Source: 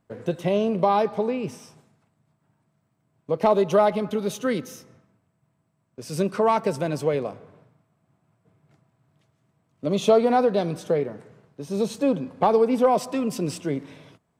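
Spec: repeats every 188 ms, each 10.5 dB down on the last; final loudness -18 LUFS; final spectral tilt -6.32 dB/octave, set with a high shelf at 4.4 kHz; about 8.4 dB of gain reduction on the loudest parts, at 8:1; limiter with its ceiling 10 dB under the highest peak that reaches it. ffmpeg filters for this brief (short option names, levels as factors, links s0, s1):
-af "highshelf=f=4400:g=-8.5,acompressor=threshold=0.0794:ratio=8,alimiter=limit=0.0891:level=0:latency=1,aecho=1:1:188|376|564:0.299|0.0896|0.0269,volume=4.47"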